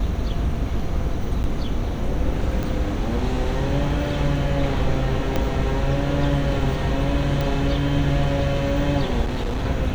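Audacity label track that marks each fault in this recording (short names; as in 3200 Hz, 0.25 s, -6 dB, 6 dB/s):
1.430000	1.440000	gap 9.9 ms
2.630000	2.630000	pop
5.360000	5.360000	pop -9 dBFS
7.410000	7.410000	pop
9.240000	9.660000	clipped -21 dBFS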